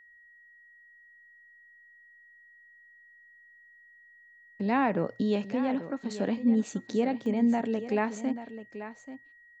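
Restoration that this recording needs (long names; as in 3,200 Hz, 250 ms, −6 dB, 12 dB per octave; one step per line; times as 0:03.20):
notch filter 1,900 Hz, Q 30
repair the gap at 0:07.26, 1.1 ms
echo removal 836 ms −12.5 dB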